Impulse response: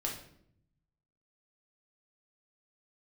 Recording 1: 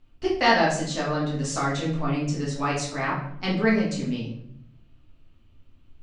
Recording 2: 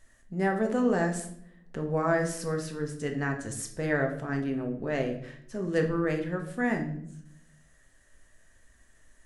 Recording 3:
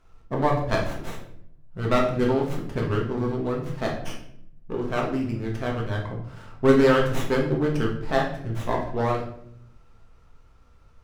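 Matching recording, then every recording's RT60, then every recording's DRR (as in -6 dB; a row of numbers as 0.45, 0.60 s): 3; 0.70, 0.70, 0.70 s; -6.0, 3.0, -2.0 dB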